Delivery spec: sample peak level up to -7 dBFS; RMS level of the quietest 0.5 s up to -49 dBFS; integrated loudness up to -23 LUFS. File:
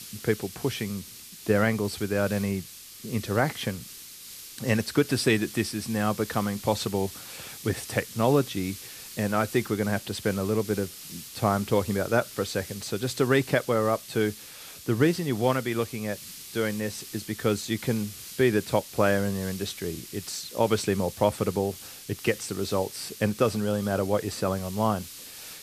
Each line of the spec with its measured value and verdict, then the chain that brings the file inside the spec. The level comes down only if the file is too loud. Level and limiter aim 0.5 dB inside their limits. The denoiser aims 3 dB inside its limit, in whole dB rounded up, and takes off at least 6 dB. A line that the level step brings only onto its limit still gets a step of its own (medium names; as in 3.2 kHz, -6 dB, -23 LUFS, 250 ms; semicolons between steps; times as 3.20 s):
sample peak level -8.5 dBFS: pass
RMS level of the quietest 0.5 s -44 dBFS: fail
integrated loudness -27.5 LUFS: pass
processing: noise reduction 8 dB, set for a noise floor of -44 dBFS